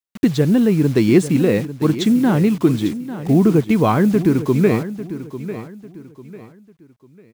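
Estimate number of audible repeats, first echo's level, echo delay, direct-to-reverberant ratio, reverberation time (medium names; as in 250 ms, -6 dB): 3, -13.0 dB, 847 ms, no reverb, no reverb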